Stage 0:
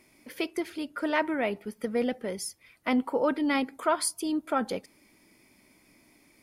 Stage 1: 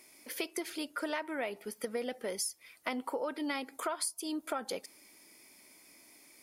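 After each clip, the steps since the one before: tone controls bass -13 dB, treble +8 dB; compressor 10:1, threshold -32 dBFS, peak gain reduction 15 dB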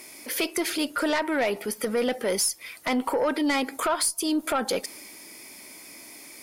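one diode to ground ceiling -20.5 dBFS; transient shaper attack -4 dB, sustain +2 dB; sine folder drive 7 dB, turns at -21 dBFS; gain +3 dB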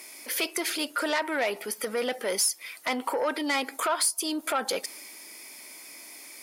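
HPF 570 Hz 6 dB/oct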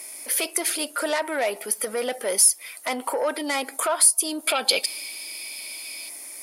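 spectral gain 4.48–6.09, 2200–5200 Hz +12 dB; fifteen-band EQ 100 Hz -11 dB, 630 Hz +5 dB, 10000 Hz +11 dB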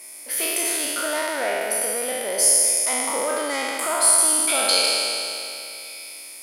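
spectral trails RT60 2.84 s; gain -5 dB

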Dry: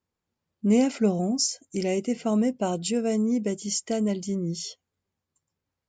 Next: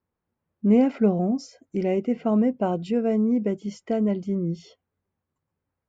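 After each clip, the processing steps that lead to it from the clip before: LPF 1800 Hz 12 dB/oct; gain +2.5 dB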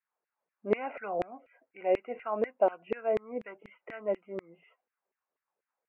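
Chebyshev low-pass 2800 Hz, order 8; LFO high-pass saw down 4.1 Hz 430–2100 Hz; gain -4 dB

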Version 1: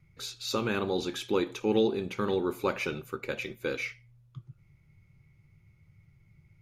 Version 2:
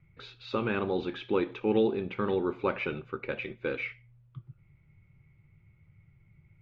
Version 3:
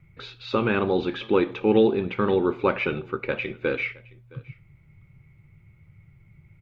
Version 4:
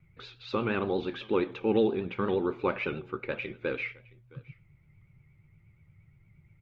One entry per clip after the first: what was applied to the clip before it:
LPF 3100 Hz 24 dB/oct
echo 0.666 s -24 dB; gain +7 dB
vibrato 8.5 Hz 71 cents; gain -6.5 dB

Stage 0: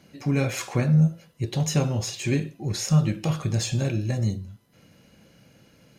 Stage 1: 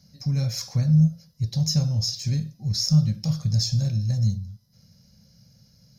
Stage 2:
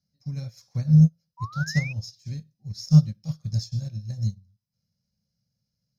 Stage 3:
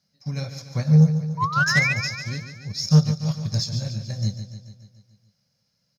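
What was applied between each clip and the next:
EQ curve 120 Hz 0 dB, 210 Hz -5 dB, 330 Hz -27 dB, 540 Hz -14 dB, 1100 Hz -18 dB, 2000 Hz -17 dB, 2800 Hz -21 dB, 5300 Hz +8 dB, 8000 Hz -16 dB, 13000 Hz -3 dB; gain +3.5 dB
painted sound rise, 1.37–1.93, 940–2600 Hz -28 dBFS; upward expander 2.5:1, over -32 dBFS; gain +4.5 dB
overdrive pedal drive 22 dB, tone 3100 Hz, clips at -5 dBFS; on a send: feedback echo 0.144 s, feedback 59%, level -10 dB

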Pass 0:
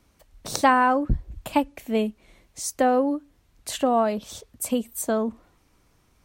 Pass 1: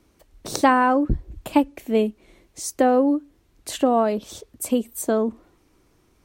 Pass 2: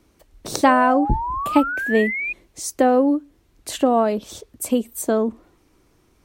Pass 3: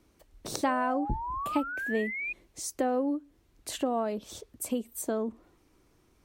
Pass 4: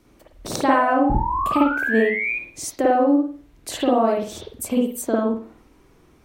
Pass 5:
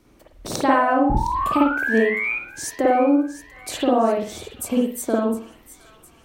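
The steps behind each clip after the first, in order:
bell 350 Hz +9 dB 0.76 oct
painted sound rise, 0.66–2.33, 570–2500 Hz -27 dBFS; gain +1.5 dB
compressor 1.5:1, threshold -30 dBFS, peak gain reduction 7.5 dB; gain -6 dB
reverb, pre-delay 49 ms, DRR -3.5 dB; gain +6 dB
thin delay 0.71 s, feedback 51%, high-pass 1800 Hz, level -14 dB

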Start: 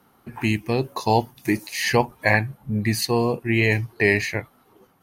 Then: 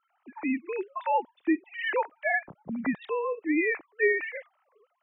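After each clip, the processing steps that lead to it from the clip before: sine-wave speech; gain -7 dB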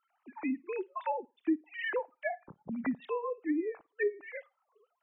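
treble ducked by the level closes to 520 Hz, closed at -22 dBFS; flutter echo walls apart 9.4 m, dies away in 0.25 s; reverb removal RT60 0.73 s; gain -3.5 dB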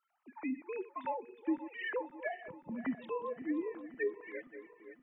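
regenerating reverse delay 0.263 s, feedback 70%, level -13.5 dB; gain -4 dB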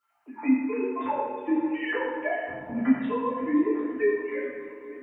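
reverb RT60 1.4 s, pre-delay 5 ms, DRR -8.5 dB; gain +2 dB

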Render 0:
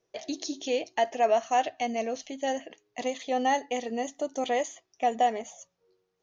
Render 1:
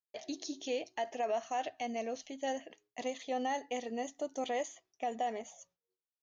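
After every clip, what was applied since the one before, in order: expander -56 dBFS; limiter -19.5 dBFS, peak gain reduction 5.5 dB; gain -6.5 dB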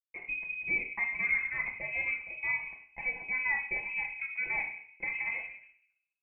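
companded quantiser 8-bit; reverb RT60 0.65 s, pre-delay 6 ms, DRR 0.5 dB; inverted band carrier 2800 Hz

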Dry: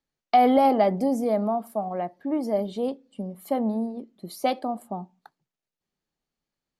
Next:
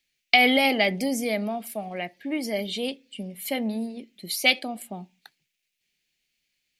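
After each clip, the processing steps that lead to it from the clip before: resonant high shelf 1600 Hz +13.5 dB, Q 3; gain -2 dB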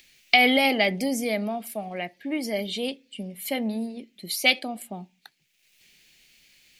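upward compressor, threshold -42 dBFS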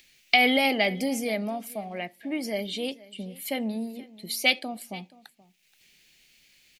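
echo 0.477 s -21 dB; gain -2 dB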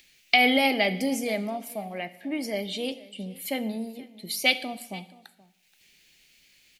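plate-style reverb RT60 0.84 s, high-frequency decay 1×, DRR 13 dB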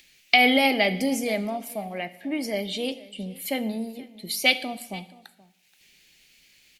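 gain +2 dB; Opus 96 kbps 48000 Hz

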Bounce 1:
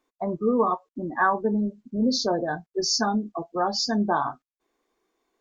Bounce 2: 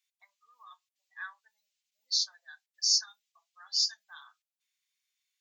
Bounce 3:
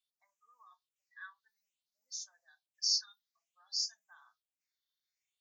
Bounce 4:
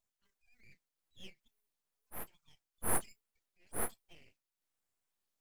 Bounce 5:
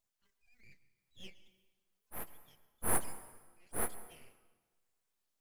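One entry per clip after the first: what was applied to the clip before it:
inverse Chebyshev high-pass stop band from 400 Hz, stop band 80 dB
dynamic EQ 1200 Hz, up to -4 dB, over -52 dBFS, Q 0.96; phaser stages 6, 0.56 Hz, lowest notch 620–4100 Hz; harmonic-percussive split harmonic +6 dB; gain -7.5 dB
full-wave rectifier; transient shaper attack -8 dB, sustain -1 dB; gain +3.5 dB
plate-style reverb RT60 1.3 s, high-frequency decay 0.85×, pre-delay 95 ms, DRR 14 dB; gain +1 dB

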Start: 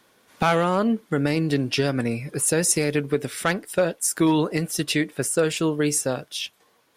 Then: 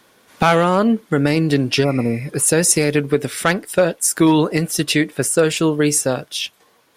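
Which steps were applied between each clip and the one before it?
spectral repair 1.86–2.19, 1400–9900 Hz after; gain +6 dB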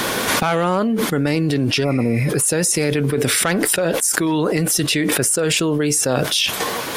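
fast leveller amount 100%; gain -7.5 dB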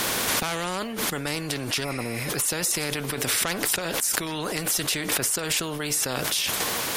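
spectral compressor 2:1; gain -4.5 dB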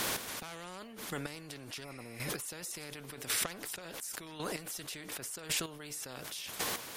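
chopper 0.91 Hz, depth 65%, duty 15%; gain -8 dB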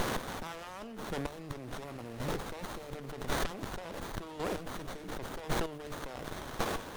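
running maximum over 17 samples; gain +5 dB

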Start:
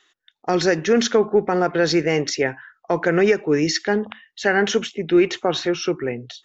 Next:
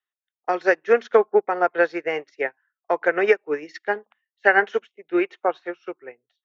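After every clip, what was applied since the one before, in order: three-band isolator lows -23 dB, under 410 Hz, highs -17 dB, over 3000 Hz; upward expander 2.5:1, over -40 dBFS; gain +7 dB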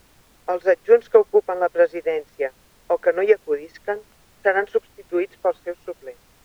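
bell 500 Hz +11 dB 0.82 oct; added noise pink -49 dBFS; gain -6 dB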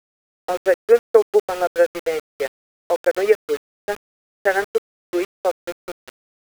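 sample gate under -26.5 dBFS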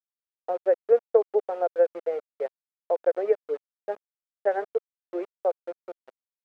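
band-pass 600 Hz, Q 1.8; gain -3.5 dB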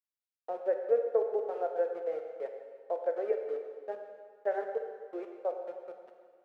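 plate-style reverb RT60 1.8 s, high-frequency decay 0.95×, pre-delay 0 ms, DRR 3.5 dB; gain -8 dB

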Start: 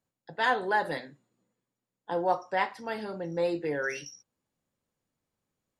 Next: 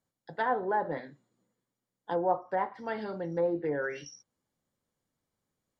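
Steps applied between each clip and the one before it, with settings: treble ducked by the level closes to 1000 Hz, closed at -25.5 dBFS; notch 2600 Hz, Q 7.5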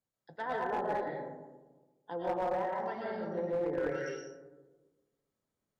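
digital reverb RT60 1.3 s, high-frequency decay 0.3×, pre-delay 80 ms, DRR -4 dB; one-sided clip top -20.5 dBFS; gain -8.5 dB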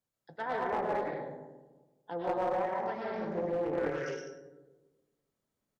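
on a send: feedback echo 0.101 s, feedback 17%, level -10 dB; on the sum: Doppler distortion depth 0.31 ms; gain +1 dB

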